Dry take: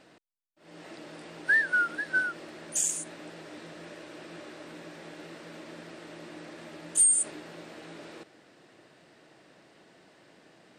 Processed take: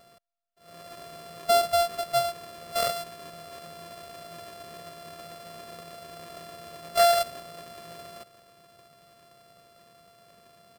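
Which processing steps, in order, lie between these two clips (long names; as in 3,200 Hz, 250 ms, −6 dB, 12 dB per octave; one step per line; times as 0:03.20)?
samples sorted by size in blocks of 64 samples
comb filter 1.7 ms, depth 60%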